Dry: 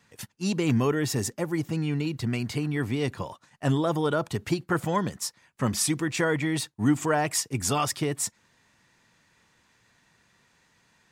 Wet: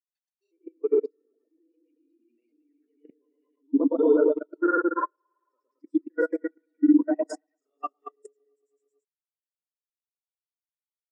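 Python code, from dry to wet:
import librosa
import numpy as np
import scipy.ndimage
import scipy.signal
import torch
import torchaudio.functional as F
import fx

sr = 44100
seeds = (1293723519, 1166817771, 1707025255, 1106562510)

p1 = fx.low_shelf(x, sr, hz=360.0, db=-6.0)
p2 = fx.rider(p1, sr, range_db=5, speed_s=2.0)
p3 = p1 + (p2 * librosa.db_to_amplitude(1.0))
p4 = fx.granulator(p3, sr, seeds[0], grain_ms=100.0, per_s=20.0, spray_ms=25.0, spread_st=0)
p5 = fx.brickwall_highpass(p4, sr, low_hz=250.0)
p6 = fx.granulator(p5, sr, seeds[1], grain_ms=100.0, per_s=20.0, spray_ms=100.0, spread_st=0)
p7 = p6 + fx.echo_opening(p6, sr, ms=111, hz=750, octaves=2, feedback_pct=70, wet_db=0, dry=0)
p8 = fx.level_steps(p7, sr, step_db=21)
p9 = fx.buffer_crackle(p8, sr, first_s=0.57, period_s=0.23, block=256, kind='zero')
y = fx.spectral_expand(p9, sr, expansion=2.5)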